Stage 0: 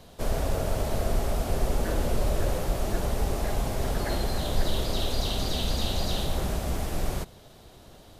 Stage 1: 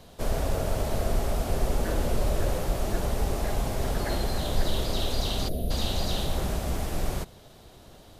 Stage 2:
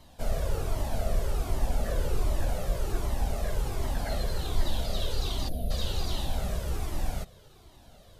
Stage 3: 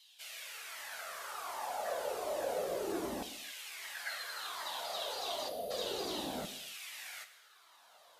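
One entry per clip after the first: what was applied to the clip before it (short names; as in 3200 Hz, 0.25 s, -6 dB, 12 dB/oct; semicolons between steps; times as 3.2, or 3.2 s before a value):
spectral gain 5.49–5.71, 740–9300 Hz -20 dB
cascading flanger falling 1.3 Hz
LFO high-pass saw down 0.31 Hz 260–3300 Hz; non-linear reverb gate 0.31 s falling, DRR 8.5 dB; gain -3.5 dB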